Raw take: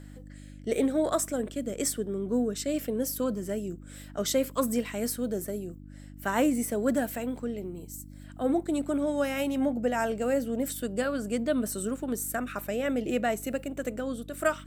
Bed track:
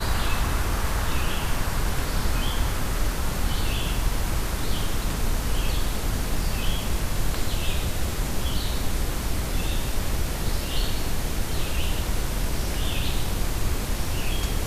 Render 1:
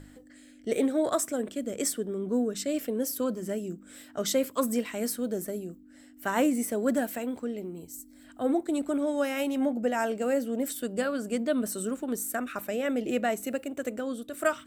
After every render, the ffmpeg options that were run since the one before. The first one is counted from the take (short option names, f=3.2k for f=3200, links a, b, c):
-af "bandreject=f=50:t=h:w=4,bandreject=f=100:t=h:w=4,bandreject=f=150:t=h:w=4,bandreject=f=200:t=h:w=4"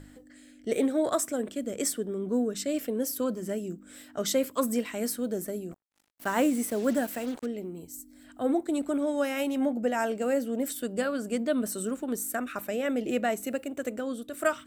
-filter_complex "[0:a]asettb=1/sr,asplit=3[a][b][c];[a]atrim=end=5.714[d];[b]atrim=start=5.71:end=7.46,asetpts=PTS-STARTPTS,afade=t=in:d=0.004:c=qsin,afade=t=out:st=1.746:d=0.004:c=qsin,acrusher=bits=6:mix=0:aa=0.5[e];[c]atrim=start=7.456[f];[d][e]acrossfade=d=0.004:c1=hsin:c2=qsin[g];[g][f]acrossfade=d=0.004:c1=qsin:c2=hsin"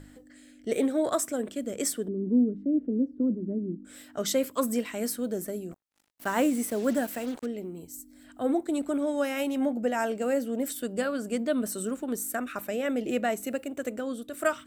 -filter_complex "[0:a]asettb=1/sr,asplit=3[a][b][c];[a]atrim=end=2.084[d];[b]atrim=start=2.08:end=3.85,asetpts=PTS-STARTPTS,afade=t=in:d=0.004:c=qsin,afade=t=out:st=1.766:d=0.004:c=qsin,lowpass=f=290:t=q:w=2.1[e];[c]atrim=start=3.846[f];[d][e]acrossfade=d=0.004:c1=hsin:c2=qsin[g];[g][f]acrossfade=d=0.004:c1=qsin:c2=hsin"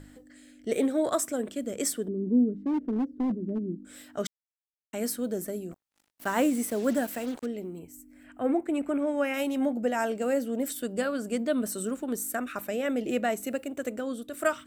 -filter_complex "[0:a]asettb=1/sr,asplit=3[a][b][c];[a]atrim=end=2.594[d];[b]atrim=start=2.59:end=3.6,asetpts=PTS-STARTPTS,afade=t=in:d=0.004:c=qsin,afade=t=out:st=1.006:d=0.004:c=qsin,asoftclip=type=hard:threshold=-24dB[e];[c]atrim=start=3.596[f];[d][e]acrossfade=d=0.004:c1=hsin:c2=qsin[g];[g][f]acrossfade=d=0.004:c1=qsin:c2=hsin,asettb=1/sr,asplit=3[h][i][j];[h]atrim=end=7.794[k];[i]atrim=start=7.79:end=9.34,asetpts=PTS-STARTPTS,afade=t=in:d=0.004:c=qsin,afade=t=out:st=1.546:d=0.004:c=qsin,highshelf=f=3.1k:t=q:w=3:g=-6.5[l];[j]atrim=start=9.336[m];[k][l]acrossfade=d=0.004:c1=hsin:c2=qsin[n];[n][m]acrossfade=d=0.004:c1=qsin:c2=hsin,asplit=3[o][p][q];[o]atrim=end=4.27,asetpts=PTS-STARTPTS,afade=t=out:st=4.266:d=0.004:c=hsin[r];[p]atrim=start=4.27:end=4.93,asetpts=PTS-STARTPTS,volume=0[s];[q]atrim=start=4.93,asetpts=PTS-STARTPTS,afade=t=in:d=0.004:c=hsin[t];[r][s][t]concat=n=3:v=0:a=1"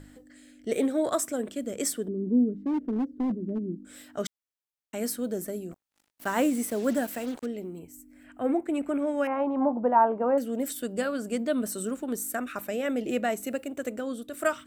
-filter_complex "[0:a]asettb=1/sr,asplit=3[a][b][c];[a]atrim=end=9.274[d];[b]atrim=start=9.27:end=10.38,asetpts=PTS-STARTPTS,afade=t=in:d=0.004:c=qsin,afade=t=out:st=1.106:d=0.004:c=qsin,lowpass=f=1k:t=q:w=9.3[e];[c]atrim=start=10.376[f];[d][e]acrossfade=d=0.004:c1=hsin:c2=qsin[g];[g][f]acrossfade=d=0.004:c1=qsin:c2=hsin"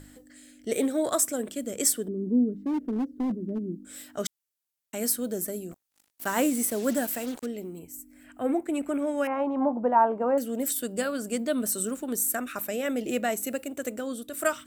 -af "aemphasis=mode=production:type=cd"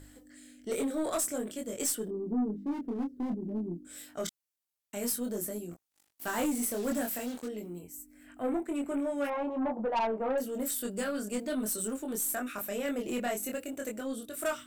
-af "flanger=delay=22.5:depth=2.6:speed=0.5,aeval=exprs='(tanh(17.8*val(0)+0.1)-tanh(0.1))/17.8':c=same"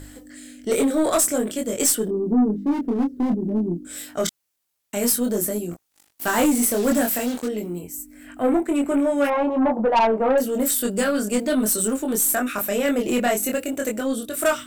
-af "volume=12dB"